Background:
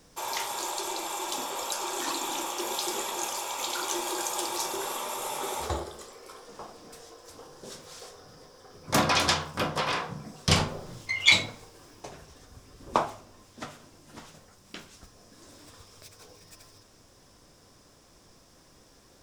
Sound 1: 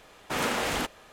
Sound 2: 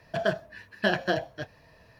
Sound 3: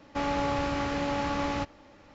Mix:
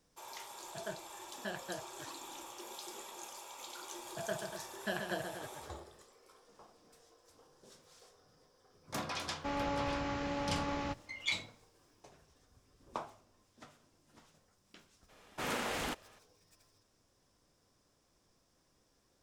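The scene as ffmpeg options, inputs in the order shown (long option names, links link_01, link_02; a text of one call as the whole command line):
ffmpeg -i bed.wav -i cue0.wav -i cue1.wav -i cue2.wav -filter_complex "[2:a]asplit=2[link_01][link_02];[0:a]volume=-16dB[link_03];[link_02]aecho=1:1:131.2|239.1:0.501|0.316[link_04];[link_01]atrim=end=1.99,asetpts=PTS-STARTPTS,volume=-17dB,afade=type=in:duration=0.004:curve=hsin,afade=type=out:start_time=1.986:duration=0.004:curve=hsin,adelay=610[link_05];[link_04]atrim=end=1.99,asetpts=PTS-STARTPTS,volume=-13dB,afade=type=in:duration=0.004:curve=hsin,afade=type=out:start_time=1.986:duration=0.004:curve=hsin,adelay=4030[link_06];[3:a]atrim=end=2.14,asetpts=PTS-STARTPTS,volume=-7.5dB,afade=type=in:duration=0.004:curve=hsin,afade=type=out:start_time=2.136:duration=0.004:curve=hsin,adelay=9290[link_07];[1:a]atrim=end=1.12,asetpts=PTS-STARTPTS,volume=-8.5dB,afade=type=in:duration=0.02,afade=type=out:start_time=1.1:duration=0.02,adelay=665028S[link_08];[link_03][link_05][link_06][link_07][link_08]amix=inputs=5:normalize=0" out.wav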